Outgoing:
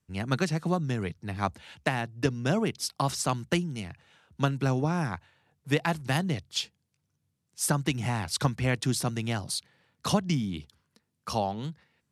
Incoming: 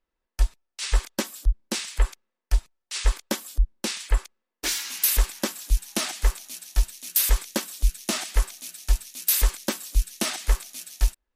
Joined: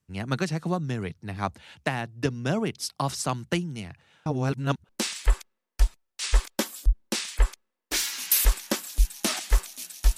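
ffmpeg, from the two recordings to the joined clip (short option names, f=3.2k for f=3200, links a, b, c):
-filter_complex "[0:a]apad=whole_dur=10.17,atrim=end=10.17,asplit=2[a][b];[a]atrim=end=4.262[c];[b]atrim=start=4.258:end=4.892,asetpts=PTS-STARTPTS,areverse[d];[1:a]atrim=start=1.608:end=6.89[e];[c][d]acrossfade=d=0.004:c1=hsin:c2=hsin[f];[f][e]acrossfade=d=0.004:c1=hsin:c2=hsin"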